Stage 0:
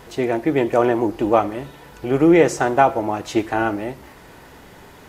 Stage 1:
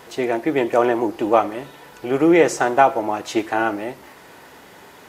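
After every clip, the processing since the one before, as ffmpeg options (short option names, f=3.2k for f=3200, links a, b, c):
-af "highpass=f=330:p=1,volume=1.5dB"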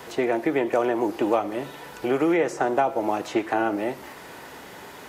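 -filter_complex "[0:a]acrossover=split=140|800|2200[a][b][c][d];[a]acompressor=threshold=-53dB:ratio=4[e];[b]acompressor=threshold=-24dB:ratio=4[f];[c]acompressor=threshold=-34dB:ratio=4[g];[d]acompressor=threshold=-45dB:ratio=4[h];[e][f][g][h]amix=inputs=4:normalize=0,volume=2.5dB"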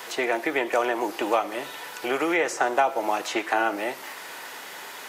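-af "highpass=f=1.4k:p=1,volume=7dB"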